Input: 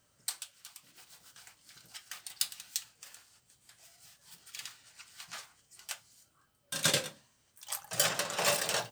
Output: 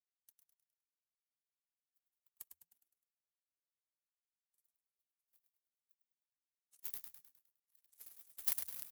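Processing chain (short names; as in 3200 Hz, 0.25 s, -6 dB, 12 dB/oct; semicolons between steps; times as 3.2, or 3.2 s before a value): trilling pitch shifter -10 st, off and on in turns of 0.155 s; spectral gate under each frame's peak -30 dB weak; tilt +3 dB/oct; power-law curve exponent 2; on a send: frequency-shifting echo 0.103 s, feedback 47%, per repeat -88 Hz, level -7 dB; on the sum: gain +10 dB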